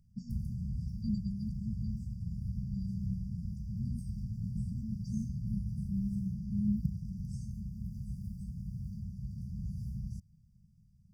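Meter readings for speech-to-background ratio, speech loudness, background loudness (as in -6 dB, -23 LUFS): 0.0 dB, -40.0 LUFS, -40.0 LUFS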